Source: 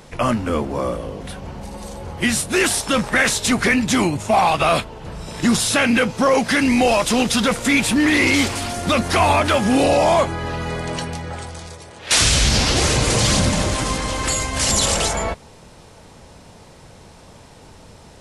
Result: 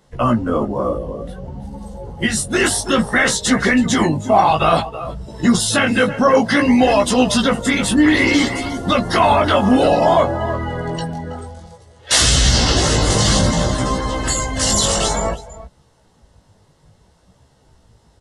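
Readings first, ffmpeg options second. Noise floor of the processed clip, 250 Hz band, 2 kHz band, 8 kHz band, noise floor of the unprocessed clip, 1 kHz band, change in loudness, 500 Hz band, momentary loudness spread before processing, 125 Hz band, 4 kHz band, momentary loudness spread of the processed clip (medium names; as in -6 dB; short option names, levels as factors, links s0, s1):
-55 dBFS, +3.0 dB, +0.5 dB, +1.0 dB, -45 dBFS, +2.5 dB, +2.0 dB, +3.0 dB, 17 LU, +2.5 dB, +1.0 dB, 14 LU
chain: -af "bandreject=f=2400:w=5.9,aecho=1:1:326:0.251,afftdn=nr=15:nf=-28,flanger=delay=15:depth=5.1:speed=0.57,volume=1.88"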